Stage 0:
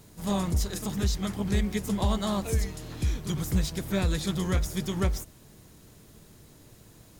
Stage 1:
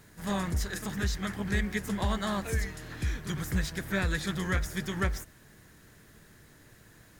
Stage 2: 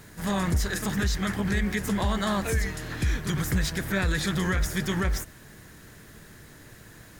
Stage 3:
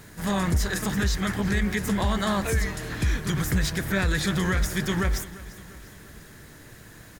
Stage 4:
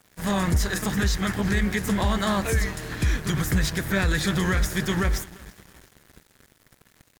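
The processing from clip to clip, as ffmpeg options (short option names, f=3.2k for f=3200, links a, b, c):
-af "equalizer=f=1.7k:w=2:g=13.5,volume=-4dB"
-af "alimiter=level_in=1dB:limit=-24dB:level=0:latency=1:release=35,volume=-1dB,volume=7.5dB"
-af "aecho=1:1:347|694|1041|1388:0.126|0.0667|0.0354|0.0187,volume=1.5dB"
-af "aeval=exprs='sgn(val(0))*max(abs(val(0))-0.00708,0)':c=same,volume=2dB"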